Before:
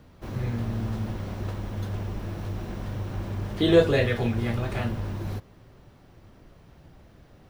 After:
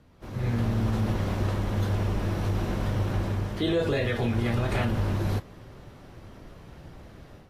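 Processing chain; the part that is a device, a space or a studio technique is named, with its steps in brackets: low-bitrate web radio (level rider gain up to 11 dB; peak limiter -12 dBFS, peak gain reduction 10.5 dB; trim -5.5 dB; AAC 48 kbps 32 kHz)

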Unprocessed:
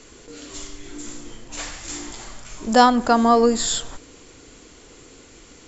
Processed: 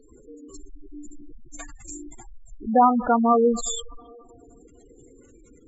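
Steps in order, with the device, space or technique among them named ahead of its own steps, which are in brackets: filtered reverb send (on a send at -12 dB: high-pass 490 Hz 12 dB/octave + low-pass 3.1 kHz 12 dB/octave + reverberation RT60 2.4 s, pre-delay 5 ms); on the sum: spectral gate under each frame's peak -10 dB strong; trim -2 dB

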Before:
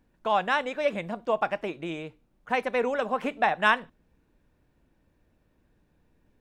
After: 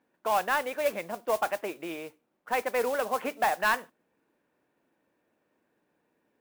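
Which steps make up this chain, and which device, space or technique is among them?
carbon microphone (band-pass 330–2900 Hz; saturation -16.5 dBFS, distortion -15 dB; modulation noise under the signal 16 dB)

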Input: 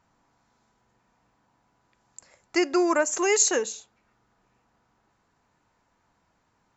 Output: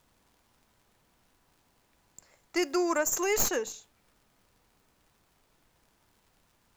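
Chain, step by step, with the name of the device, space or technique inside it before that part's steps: record under a worn stylus (tracing distortion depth 0.065 ms; crackle; pink noise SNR 34 dB); 2.59–3.24 s: treble shelf 5.9 kHz +10 dB; trim -5.5 dB

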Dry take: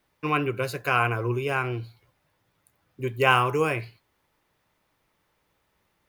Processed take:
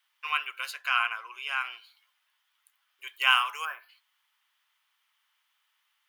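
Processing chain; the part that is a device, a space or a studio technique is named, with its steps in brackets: headphones lying on a table (high-pass 1.1 kHz 24 dB/octave; peaking EQ 3.1 kHz +10 dB 0.28 oct); 0.71–1.61 s: treble shelf 9.4 kHz -11.5 dB; 3.65–3.89 s: time-frequency box 1.8–11 kHz -18 dB; trim -1.5 dB

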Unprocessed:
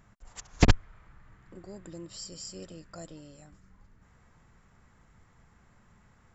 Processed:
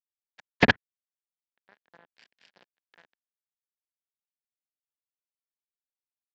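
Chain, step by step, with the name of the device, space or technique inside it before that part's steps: blown loudspeaker (crossover distortion -36 dBFS; cabinet simulation 230–3900 Hz, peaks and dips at 330 Hz -7 dB, 1.2 kHz -5 dB, 1.7 kHz +9 dB); trim +6 dB

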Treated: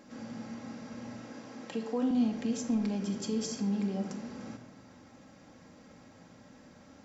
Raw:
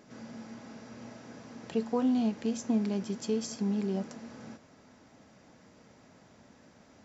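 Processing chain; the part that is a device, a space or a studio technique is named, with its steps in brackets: 1.22–2.11 s: high-pass 230 Hz 12 dB/octave; clipper into limiter (hard clipper -21.5 dBFS, distortion -32 dB; peak limiter -26.5 dBFS, peak gain reduction 5 dB); simulated room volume 3000 m³, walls furnished, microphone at 2.2 m

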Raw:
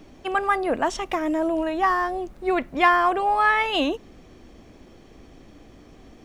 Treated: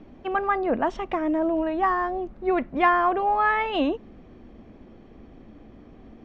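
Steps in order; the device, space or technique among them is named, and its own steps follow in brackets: phone in a pocket (low-pass 3.7 kHz 12 dB/octave; peaking EQ 220 Hz +6 dB 0.3 oct; treble shelf 2.1 kHz -9 dB)

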